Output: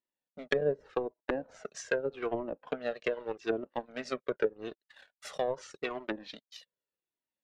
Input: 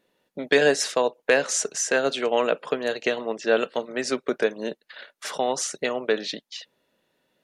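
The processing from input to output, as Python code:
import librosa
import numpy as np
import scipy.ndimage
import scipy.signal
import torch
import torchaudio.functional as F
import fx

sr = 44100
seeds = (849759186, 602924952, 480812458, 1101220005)

y = fx.power_curve(x, sr, exponent=1.4)
y = fx.env_lowpass_down(y, sr, base_hz=430.0, full_db=-22.0)
y = fx.comb_cascade(y, sr, direction='falling', hz=0.83)
y = F.gain(torch.from_numpy(y), 2.5).numpy()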